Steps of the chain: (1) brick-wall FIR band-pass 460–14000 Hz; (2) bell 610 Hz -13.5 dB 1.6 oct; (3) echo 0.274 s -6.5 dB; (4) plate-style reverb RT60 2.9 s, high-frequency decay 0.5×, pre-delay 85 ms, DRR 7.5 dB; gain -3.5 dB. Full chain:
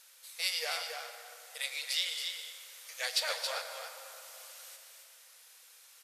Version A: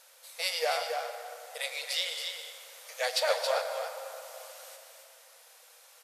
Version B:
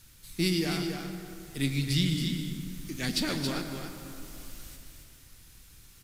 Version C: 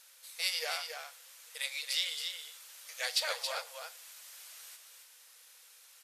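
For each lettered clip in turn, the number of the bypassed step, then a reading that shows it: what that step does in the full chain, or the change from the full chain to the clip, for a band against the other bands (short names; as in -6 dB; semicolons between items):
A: 2, 500 Hz band +11.0 dB; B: 1, 500 Hz band +6.5 dB; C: 4, echo-to-direct -3.5 dB to -6.5 dB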